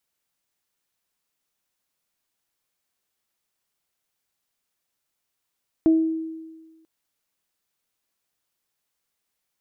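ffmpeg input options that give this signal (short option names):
-f lavfi -i "aevalsrc='0.251*pow(10,-3*t/1.38)*sin(2*PI*322*t)+0.0376*pow(10,-3*t/0.43)*sin(2*PI*644*t)':d=0.99:s=44100"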